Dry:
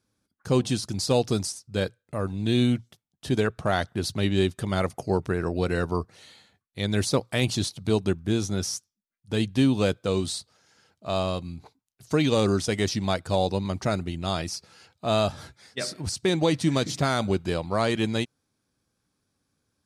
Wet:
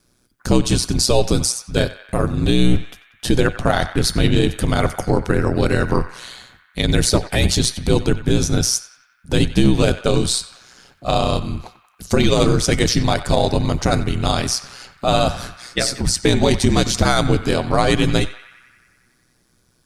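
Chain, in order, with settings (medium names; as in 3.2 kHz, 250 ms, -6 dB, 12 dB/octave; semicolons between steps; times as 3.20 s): octave divider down 2 oct, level -1 dB; ring modulator 62 Hz; in parallel at -0.5 dB: compression, threshold -36 dBFS, peak gain reduction 18 dB; on the sum: treble shelf 4.6 kHz +4.5 dB; feedback comb 730 Hz, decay 0.36 s, mix 60%; on a send: band-passed feedback delay 92 ms, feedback 75%, band-pass 1.7 kHz, level -13.5 dB; on the sum: loudness maximiser +19.5 dB; trim -2.5 dB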